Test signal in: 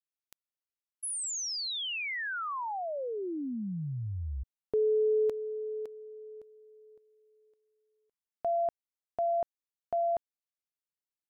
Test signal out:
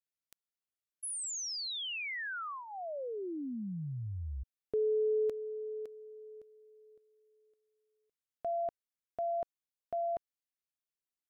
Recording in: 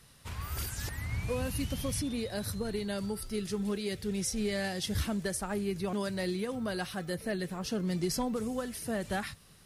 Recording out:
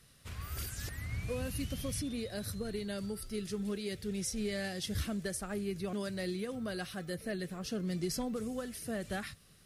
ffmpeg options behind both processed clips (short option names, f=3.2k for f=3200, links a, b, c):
-af "equalizer=f=910:t=o:w=0.33:g=-10,volume=-3.5dB"